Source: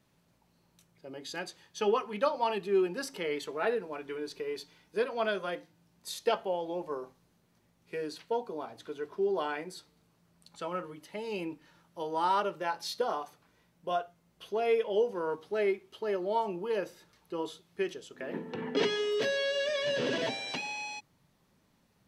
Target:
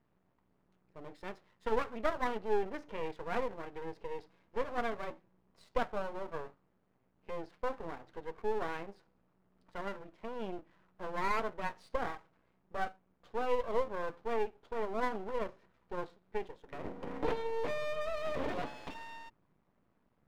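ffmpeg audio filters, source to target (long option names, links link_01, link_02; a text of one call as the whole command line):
ffmpeg -i in.wav -af "lowpass=1400,asetrate=48000,aresample=44100,aeval=exprs='max(val(0),0)':channel_layout=same" out.wav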